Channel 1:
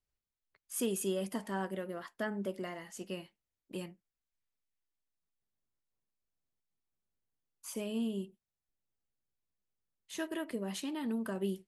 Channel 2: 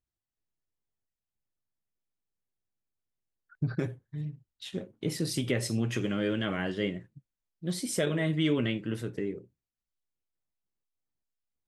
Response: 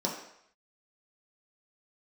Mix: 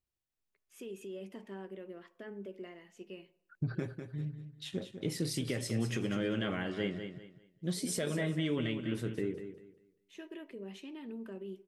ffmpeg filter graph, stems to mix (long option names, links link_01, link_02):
-filter_complex "[0:a]equalizer=frequency=160:width_type=o:width=0.67:gain=5,equalizer=frequency=400:width_type=o:width=0.67:gain=10,equalizer=frequency=2500:width_type=o:width=0.67:gain=11,equalizer=frequency=10000:width_type=o:width=0.67:gain=-10,alimiter=limit=-24dB:level=0:latency=1:release=56,volume=-14.5dB,asplit=2[link_01][link_02];[link_02]volume=-19.5dB[link_03];[1:a]volume=-2dB,asplit=3[link_04][link_05][link_06];[link_05]volume=-10dB[link_07];[link_06]apad=whole_len=514977[link_08];[link_01][link_08]sidechaincompress=threshold=-53dB:ratio=8:attack=16:release=617[link_09];[2:a]atrim=start_sample=2205[link_10];[link_03][link_10]afir=irnorm=-1:irlink=0[link_11];[link_07]aecho=0:1:198|396|594|792:1|0.26|0.0676|0.0176[link_12];[link_09][link_04][link_11][link_12]amix=inputs=4:normalize=0,alimiter=limit=-23dB:level=0:latency=1:release=354"